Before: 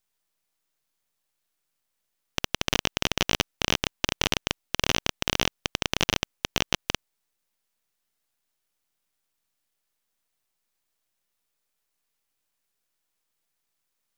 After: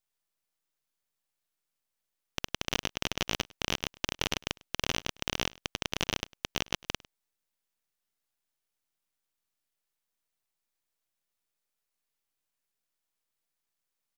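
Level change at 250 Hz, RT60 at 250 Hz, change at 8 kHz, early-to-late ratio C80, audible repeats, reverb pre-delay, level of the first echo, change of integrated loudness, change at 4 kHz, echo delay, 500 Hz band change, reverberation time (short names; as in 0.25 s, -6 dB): -6.5 dB, none, -6.5 dB, none, 1, none, -23.5 dB, -6.5 dB, -6.5 dB, 0.102 s, -6.5 dB, none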